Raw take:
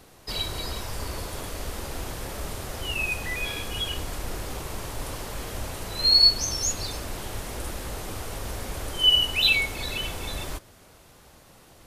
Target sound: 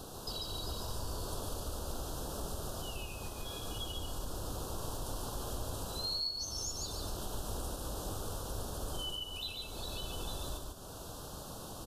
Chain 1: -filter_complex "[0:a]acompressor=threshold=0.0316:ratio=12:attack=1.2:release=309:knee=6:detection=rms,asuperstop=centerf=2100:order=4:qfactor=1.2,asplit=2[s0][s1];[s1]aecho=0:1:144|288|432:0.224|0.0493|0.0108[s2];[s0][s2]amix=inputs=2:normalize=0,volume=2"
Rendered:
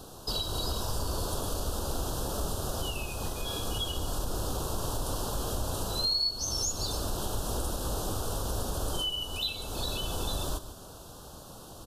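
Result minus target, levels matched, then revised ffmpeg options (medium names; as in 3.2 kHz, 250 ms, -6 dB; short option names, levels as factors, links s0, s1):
compression: peak gain reduction -9 dB; echo-to-direct -10 dB
-filter_complex "[0:a]acompressor=threshold=0.01:ratio=12:attack=1.2:release=309:knee=6:detection=rms,asuperstop=centerf=2100:order=4:qfactor=1.2,asplit=2[s0][s1];[s1]aecho=0:1:144|288|432:0.708|0.156|0.0343[s2];[s0][s2]amix=inputs=2:normalize=0,volume=2"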